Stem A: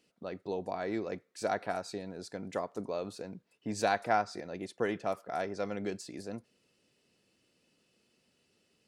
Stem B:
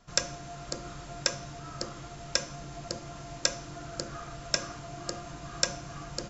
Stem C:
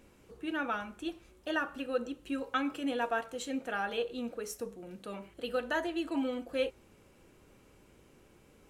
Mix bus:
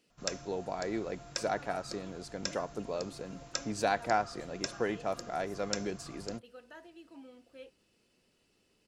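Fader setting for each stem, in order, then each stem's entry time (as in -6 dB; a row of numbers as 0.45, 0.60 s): -0.5, -9.0, -19.0 dB; 0.00, 0.10, 1.00 s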